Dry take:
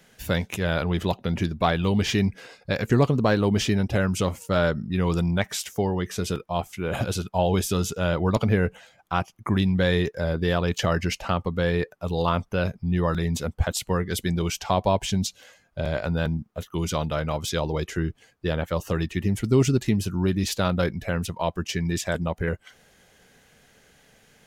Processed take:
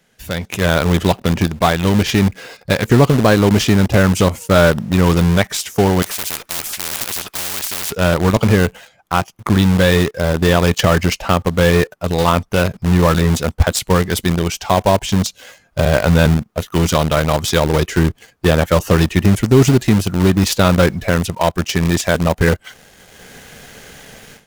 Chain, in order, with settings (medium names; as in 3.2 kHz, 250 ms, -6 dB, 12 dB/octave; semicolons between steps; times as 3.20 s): level rider gain up to 17 dB; in parallel at -11 dB: companded quantiser 2-bit; 6.02–7.92 s: on the sum: spectrum-flattening compressor 10:1; trim -3 dB